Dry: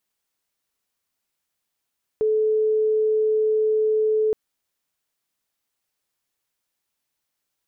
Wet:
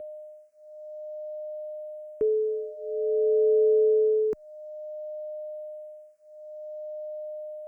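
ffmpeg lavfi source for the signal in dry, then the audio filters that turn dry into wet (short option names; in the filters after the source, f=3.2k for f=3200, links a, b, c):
-f lavfi -i "aevalsrc='0.141*sin(2*PI*433*t)':d=2.12:s=44100"
-filter_complex "[0:a]aeval=exprs='val(0)+0.0224*sin(2*PI*610*n/s)':c=same,asplit=2[a][b];[b]afreqshift=-0.53[c];[a][c]amix=inputs=2:normalize=1"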